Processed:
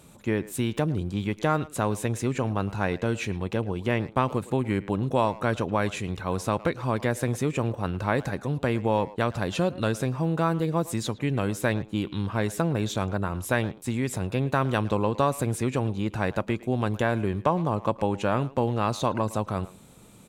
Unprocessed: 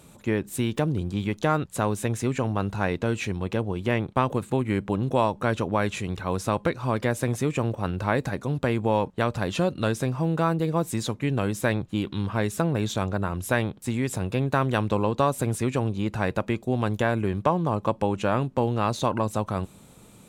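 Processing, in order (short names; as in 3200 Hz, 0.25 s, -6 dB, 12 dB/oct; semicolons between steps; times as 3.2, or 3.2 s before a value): speakerphone echo 0.11 s, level -17 dB; gain -1 dB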